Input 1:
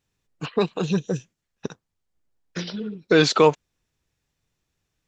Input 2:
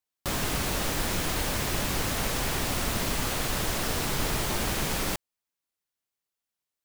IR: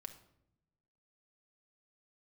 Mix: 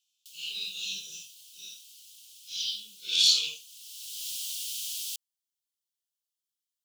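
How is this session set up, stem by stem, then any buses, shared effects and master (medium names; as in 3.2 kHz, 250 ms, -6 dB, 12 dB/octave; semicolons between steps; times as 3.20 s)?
-8.5 dB, 0.00 s, send -9 dB, phase randomisation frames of 200 ms; peaking EQ 2 kHz +7.5 dB 2 oct; sine folder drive 6 dB, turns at -2 dBFS
-1.0 dB, 0.00 s, no send, auto duck -17 dB, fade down 0.25 s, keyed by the first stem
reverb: on, RT60 0.80 s, pre-delay 5 ms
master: elliptic high-pass 3 kHz, stop band 40 dB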